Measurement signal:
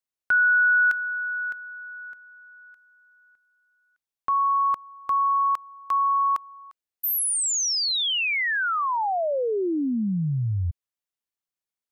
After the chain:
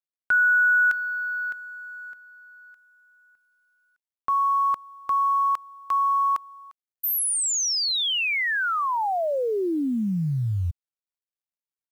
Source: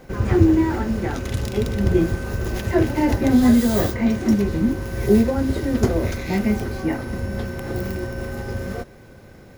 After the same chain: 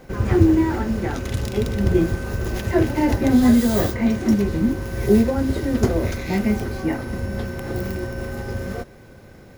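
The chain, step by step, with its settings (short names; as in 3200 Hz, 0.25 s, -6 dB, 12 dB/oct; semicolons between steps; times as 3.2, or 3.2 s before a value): companded quantiser 8-bit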